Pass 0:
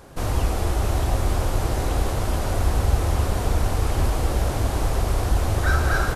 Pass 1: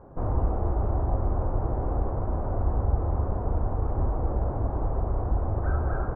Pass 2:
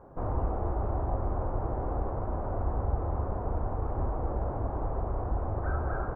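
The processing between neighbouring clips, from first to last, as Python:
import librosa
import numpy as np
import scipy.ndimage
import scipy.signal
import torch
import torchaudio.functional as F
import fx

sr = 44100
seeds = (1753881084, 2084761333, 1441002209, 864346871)

y1 = scipy.signal.sosfilt(scipy.signal.butter(4, 1100.0, 'lowpass', fs=sr, output='sos'), x)
y1 = fx.rider(y1, sr, range_db=10, speed_s=2.0)
y1 = y1 * librosa.db_to_amplitude(-4.5)
y2 = fx.low_shelf(y1, sr, hz=380.0, db=-5.5)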